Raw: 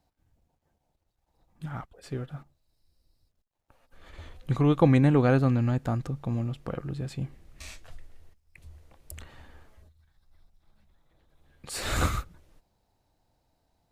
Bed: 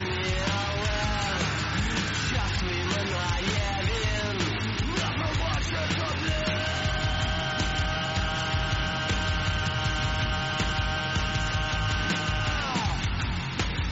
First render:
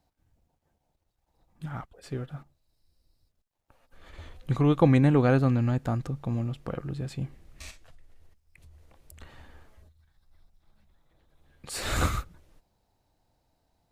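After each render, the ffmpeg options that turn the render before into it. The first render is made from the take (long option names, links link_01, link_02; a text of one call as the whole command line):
ffmpeg -i in.wav -filter_complex "[0:a]asplit=3[link_01][link_02][link_03];[link_01]afade=type=out:start_time=7.7:duration=0.02[link_04];[link_02]acompressor=threshold=-50dB:ratio=3:attack=3.2:release=140:knee=1:detection=peak,afade=type=in:start_time=7.7:duration=0.02,afade=type=out:start_time=9.2:duration=0.02[link_05];[link_03]afade=type=in:start_time=9.2:duration=0.02[link_06];[link_04][link_05][link_06]amix=inputs=3:normalize=0" out.wav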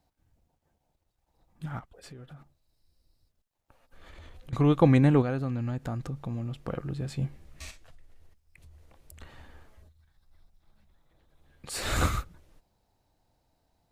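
ffmpeg -i in.wav -filter_complex "[0:a]asettb=1/sr,asplit=3[link_01][link_02][link_03];[link_01]atrim=end=1.794[link_04];[link_02]atrim=start=1.79:end=4.53,asetpts=PTS-STARTPTS,afade=type=in:duration=0.004:curve=qsin,afade=type=out:start_time=2.736:duration=0.004:curve=qsin,acompressor=threshold=-43dB:ratio=8:attack=3.2:release=140:knee=1:detection=peak[link_05];[link_03]atrim=start=4.526[link_06];[link_04][link_05]acrossfade=duration=0.004:curve1=hsin:curve2=qsin[link_07];[link_07][link_06]acrossfade=duration=0.004:curve1=qsin:curve2=hsin,asettb=1/sr,asplit=3[link_08][link_09][link_10];[link_08]atrim=end=5.224[link_11];[link_09]atrim=start=5.22:end=6.54,asetpts=PTS-STARTPTS,afade=type=in:duration=0.004:curve=qsin,afade=type=out:start_time=1.316:duration=0.004:curve=qsin,acompressor=threshold=-32dB:ratio=2:attack=3.2:release=140:knee=1:detection=peak[link_12];[link_10]atrim=start=6.536[link_13];[link_11][link_12]acrossfade=duration=0.004:curve1=hsin:curve2=qsin[link_14];[link_14][link_13]acrossfade=duration=0.004:curve1=qsin:curve2=hsin,asettb=1/sr,asplit=3[link_15][link_16][link_17];[link_15]atrim=end=7.074[link_18];[link_16]atrim=start=7.07:end=7.65,asetpts=PTS-STARTPTS,afade=type=in:duration=0.004:curve=qsin,afade=type=out:start_time=0.576:duration=0.004:curve=qsin,asplit=2[link_19][link_20];[link_20]adelay=14,volume=-5dB[link_21];[link_19][link_21]amix=inputs=2:normalize=0,atrim=end_sample=25578[link_22];[link_17]atrim=start=7.646[link_23];[link_18][link_22]acrossfade=duration=0.004:curve1=hsin:curve2=qsin[link_24];[link_24][link_23]acrossfade=duration=0.004:curve1=qsin:curve2=hsin" out.wav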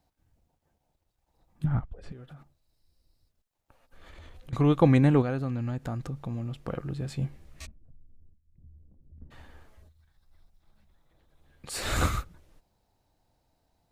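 ffmpeg -i in.wav -filter_complex "[0:a]asettb=1/sr,asplit=3[link_01][link_02][link_03];[link_01]atrim=end=1.644[link_04];[link_02]atrim=start=1.64:end=2.12,asetpts=PTS-STARTPTS,afade=type=in:duration=0.004:curve=qsin,afade=type=out:start_time=0.476:duration=0.004:curve=qsin,aemphasis=mode=reproduction:type=riaa[link_05];[link_03]atrim=start=2.116[link_06];[link_04][link_05]acrossfade=duration=0.004:curve1=hsin:curve2=qsin[link_07];[link_07][link_06]acrossfade=duration=0.004:curve1=qsin:curve2=hsin,asplit=3[link_08][link_09][link_10];[link_08]afade=type=out:start_time=7.65:duration=0.02[link_11];[link_09]lowpass=frequency=220:width_type=q:width=1.6,afade=type=in:start_time=7.65:duration=0.02,afade=type=out:start_time=9.3:duration=0.02[link_12];[link_10]afade=type=in:start_time=9.3:duration=0.02[link_13];[link_11][link_12][link_13]amix=inputs=3:normalize=0" out.wav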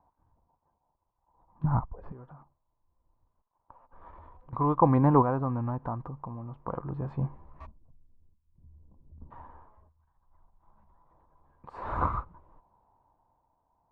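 ffmpeg -i in.wav -af "lowpass=frequency=1000:width_type=q:width=9.3,tremolo=f=0.55:d=0.55" out.wav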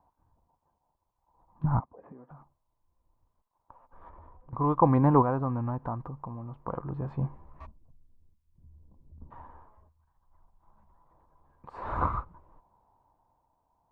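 ffmpeg -i in.wav -filter_complex "[0:a]asettb=1/sr,asplit=3[link_01][link_02][link_03];[link_01]atrim=end=1.804[link_04];[link_02]atrim=start=1.8:end=2.3,asetpts=PTS-STARTPTS,afade=type=in:duration=0.004:curve=qsin,afade=type=out:start_time=0.496:duration=0.004:curve=qsin,highpass=250,equalizer=frequency=260:width_type=q:width=4:gain=6,equalizer=frequency=380:width_type=q:width=4:gain=-3,equalizer=frequency=960:width_type=q:width=4:gain=-4,equalizer=frequency=1400:width_type=q:width=4:gain=-9,lowpass=frequency=2200:width=0.5412,lowpass=frequency=2200:width=1.3066[link_05];[link_03]atrim=start=2.296[link_06];[link_04][link_05]acrossfade=duration=0.004:curve1=hsin:curve2=qsin[link_07];[link_07][link_06]acrossfade=duration=0.004:curve1=qsin:curve2=hsin,asettb=1/sr,asplit=3[link_08][link_09][link_10];[link_08]atrim=end=4.094[link_11];[link_09]atrim=start=4.09:end=4.64,asetpts=PTS-STARTPTS,afade=type=in:duration=0.004:curve=qsin,afade=type=out:start_time=0.546:duration=0.004:curve=qsin,lowpass=frequency=1200:poles=1[link_12];[link_10]atrim=start=4.636[link_13];[link_11][link_12]acrossfade=duration=0.004:curve1=hsin:curve2=qsin[link_14];[link_14][link_13]acrossfade=duration=0.004:curve1=qsin:curve2=hsin" out.wav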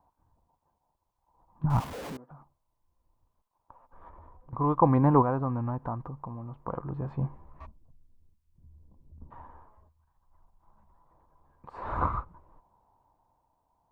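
ffmpeg -i in.wav -filter_complex "[0:a]asettb=1/sr,asplit=3[link_01][link_02][link_03];[link_01]atrim=end=1.704[link_04];[link_02]atrim=start=1.7:end=2.17,asetpts=PTS-STARTPTS,afade=type=in:duration=0.004:curve=qsin,afade=type=out:start_time=0.466:duration=0.004:curve=qsin,aeval=exprs='val(0)+0.5*0.0188*sgn(val(0))':channel_layout=same[link_05];[link_03]atrim=start=2.166[link_06];[link_04][link_05]acrossfade=duration=0.004:curve1=hsin:curve2=qsin[link_07];[link_07][link_06]acrossfade=duration=0.004:curve1=qsin:curve2=hsin" out.wav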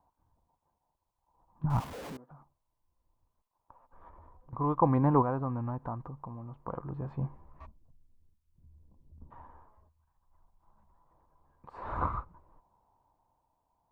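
ffmpeg -i in.wav -af "volume=-3.5dB" out.wav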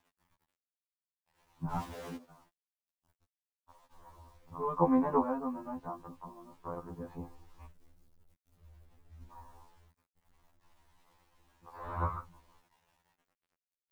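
ffmpeg -i in.wav -af "acrusher=bits=10:mix=0:aa=0.000001,afftfilt=real='re*2*eq(mod(b,4),0)':imag='im*2*eq(mod(b,4),0)':win_size=2048:overlap=0.75" out.wav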